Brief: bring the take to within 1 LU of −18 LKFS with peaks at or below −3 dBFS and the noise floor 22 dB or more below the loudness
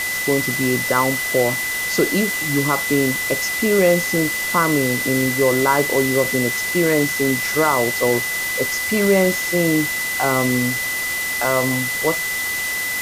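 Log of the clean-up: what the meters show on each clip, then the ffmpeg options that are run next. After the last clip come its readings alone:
interfering tone 2,000 Hz; level of the tone −22 dBFS; background noise floor −24 dBFS; target noise floor −40 dBFS; integrated loudness −18.0 LKFS; sample peak −4.0 dBFS; target loudness −18.0 LKFS
→ -af "bandreject=frequency=2000:width=30"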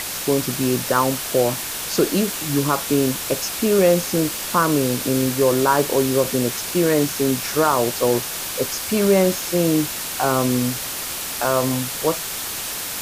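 interfering tone none found; background noise floor −28 dBFS; target noise floor −42 dBFS
→ -af "afftdn=noise_reduction=14:noise_floor=-28"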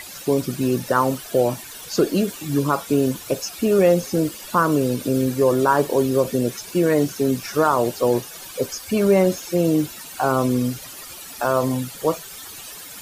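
background noise floor −38 dBFS; target noise floor −43 dBFS
→ -af "afftdn=noise_reduction=6:noise_floor=-38"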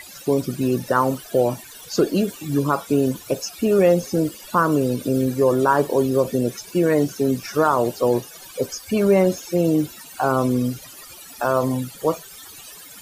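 background noise floor −42 dBFS; target noise floor −43 dBFS
→ -af "afftdn=noise_reduction=6:noise_floor=-42"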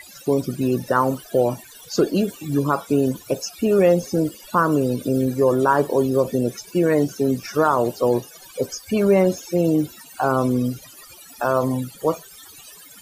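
background noise floor −45 dBFS; integrated loudness −21.0 LKFS; sample peak −5.0 dBFS; target loudness −18.0 LKFS
→ -af "volume=3dB,alimiter=limit=-3dB:level=0:latency=1"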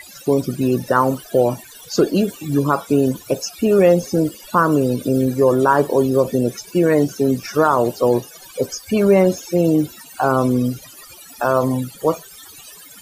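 integrated loudness −18.0 LKFS; sample peak −3.0 dBFS; background noise floor −42 dBFS

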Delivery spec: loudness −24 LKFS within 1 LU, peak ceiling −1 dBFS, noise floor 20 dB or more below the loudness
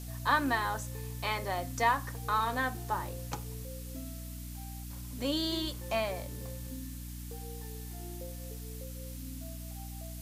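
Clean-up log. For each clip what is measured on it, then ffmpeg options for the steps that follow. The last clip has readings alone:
mains hum 60 Hz; hum harmonics up to 300 Hz; level of the hum −40 dBFS; background noise floor −43 dBFS; target noise floor −56 dBFS; integrated loudness −35.5 LKFS; sample peak −15.0 dBFS; target loudness −24.0 LKFS
→ -af "bandreject=frequency=60:width_type=h:width=6,bandreject=frequency=120:width_type=h:width=6,bandreject=frequency=180:width_type=h:width=6,bandreject=frequency=240:width_type=h:width=6,bandreject=frequency=300:width_type=h:width=6"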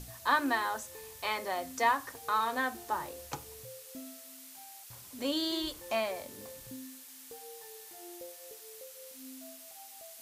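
mains hum none found; background noise floor −51 dBFS; target noise floor −54 dBFS
→ -af "afftdn=noise_reduction=6:noise_floor=-51"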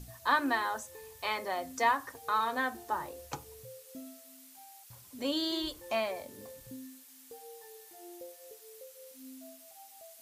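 background noise floor −56 dBFS; integrated loudness −33.0 LKFS; sample peak −15.5 dBFS; target loudness −24.0 LKFS
→ -af "volume=9dB"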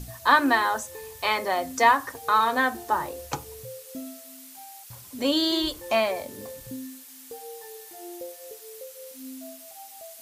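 integrated loudness −24.0 LKFS; sample peak −6.5 dBFS; background noise floor −47 dBFS

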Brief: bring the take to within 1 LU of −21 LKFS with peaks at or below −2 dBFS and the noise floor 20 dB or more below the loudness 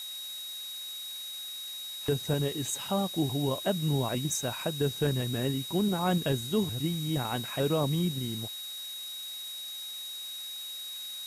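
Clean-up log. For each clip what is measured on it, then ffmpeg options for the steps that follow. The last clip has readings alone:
interfering tone 3,800 Hz; level of the tone −38 dBFS; background noise floor −40 dBFS; target noise floor −52 dBFS; integrated loudness −31.5 LKFS; sample peak −16.5 dBFS; target loudness −21.0 LKFS
→ -af "bandreject=frequency=3800:width=30"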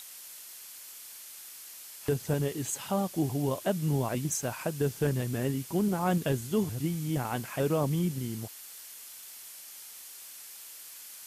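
interfering tone none found; background noise floor −47 dBFS; target noise floor −51 dBFS
→ -af "afftdn=noise_reduction=6:noise_floor=-47"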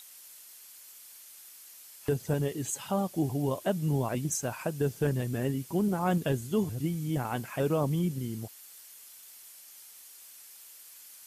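background noise floor −51 dBFS; integrated loudness −31.0 LKFS; sample peak −17.0 dBFS; target loudness −21.0 LKFS
→ -af "volume=10dB"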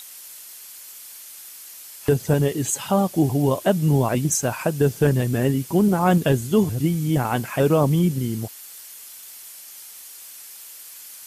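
integrated loudness −21.0 LKFS; sample peak −7.0 dBFS; background noise floor −41 dBFS

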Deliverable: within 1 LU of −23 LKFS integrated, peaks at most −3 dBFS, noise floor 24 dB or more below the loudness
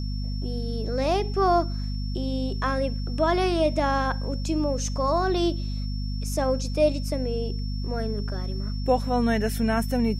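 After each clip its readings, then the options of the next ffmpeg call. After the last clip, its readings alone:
mains hum 50 Hz; hum harmonics up to 250 Hz; level of the hum −26 dBFS; interfering tone 5,400 Hz; level of the tone −42 dBFS; integrated loudness −26.0 LKFS; sample peak −10.0 dBFS; target loudness −23.0 LKFS
→ -af "bandreject=frequency=50:width_type=h:width=4,bandreject=frequency=100:width_type=h:width=4,bandreject=frequency=150:width_type=h:width=4,bandreject=frequency=200:width_type=h:width=4,bandreject=frequency=250:width_type=h:width=4"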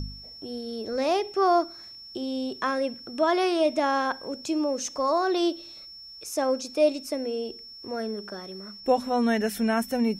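mains hum none found; interfering tone 5,400 Hz; level of the tone −42 dBFS
→ -af "bandreject=frequency=5400:width=30"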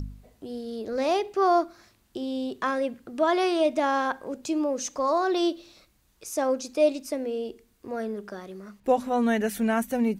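interfering tone none found; integrated loudness −27.0 LKFS; sample peak −11.0 dBFS; target loudness −23.0 LKFS
→ -af "volume=4dB"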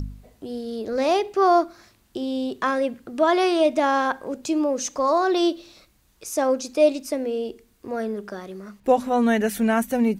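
integrated loudness −23.0 LKFS; sample peak −7.0 dBFS; background noise floor −61 dBFS

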